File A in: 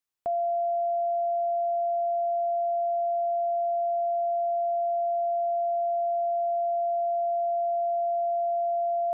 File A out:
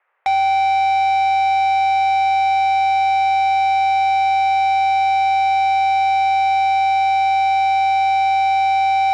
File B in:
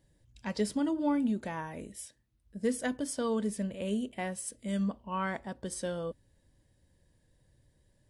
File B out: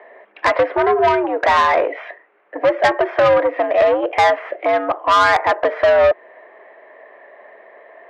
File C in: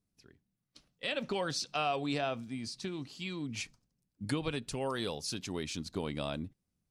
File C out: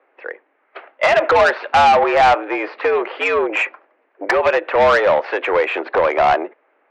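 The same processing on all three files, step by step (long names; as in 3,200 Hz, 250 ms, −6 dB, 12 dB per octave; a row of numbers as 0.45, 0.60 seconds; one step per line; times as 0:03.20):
dynamic equaliser 770 Hz, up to +4 dB, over −45 dBFS, Q 5.9
downward compressor 5 to 1, threshold −38 dBFS
harmonic generator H 5 −7 dB, 6 −24 dB, 8 −20 dB, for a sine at −24 dBFS
single-sideband voice off tune +89 Hz 420–2,100 Hz
soft clipping −35 dBFS
loudness normalisation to −16 LKFS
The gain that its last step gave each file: +20.5, +26.5, +27.0 decibels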